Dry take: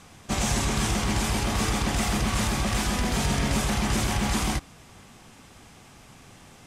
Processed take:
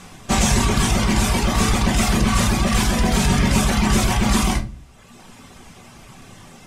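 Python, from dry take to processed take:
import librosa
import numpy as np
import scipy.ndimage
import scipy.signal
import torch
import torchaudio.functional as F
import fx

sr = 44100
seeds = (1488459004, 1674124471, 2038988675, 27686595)

y = fx.dereverb_blind(x, sr, rt60_s=1.2)
y = fx.room_shoebox(y, sr, seeds[0], volume_m3=210.0, walls='furnished', distance_m=1.1)
y = y * 10.0 ** (7.5 / 20.0)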